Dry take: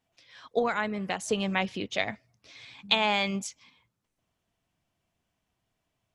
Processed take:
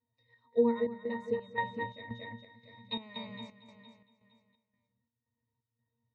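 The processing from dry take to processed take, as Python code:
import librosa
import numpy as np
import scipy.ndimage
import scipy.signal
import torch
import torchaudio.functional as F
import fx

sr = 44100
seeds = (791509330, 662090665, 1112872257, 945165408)

y = fx.octave_resonator(x, sr, note='A#', decay_s=0.28)
y = fx.echo_feedback(y, sr, ms=231, feedback_pct=53, wet_db=-6.0)
y = fx.chopper(y, sr, hz=1.9, depth_pct=60, duty_pct=65)
y = F.gain(torch.from_numpy(y), 8.5).numpy()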